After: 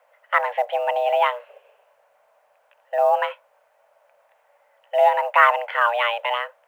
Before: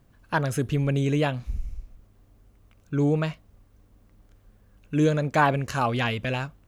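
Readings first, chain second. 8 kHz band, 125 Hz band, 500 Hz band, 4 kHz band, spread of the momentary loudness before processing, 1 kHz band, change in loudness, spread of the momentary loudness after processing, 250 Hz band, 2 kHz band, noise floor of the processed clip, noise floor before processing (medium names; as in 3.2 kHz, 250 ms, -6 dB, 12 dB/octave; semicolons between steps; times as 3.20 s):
under -10 dB, under -40 dB, +6.5 dB, +4.5 dB, 10 LU, +9.5 dB, +5.0 dB, 10 LU, under -40 dB, +7.5 dB, -63 dBFS, -59 dBFS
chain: mistuned SSB +360 Hz 200–2600 Hz; companded quantiser 8-bit; trim +6 dB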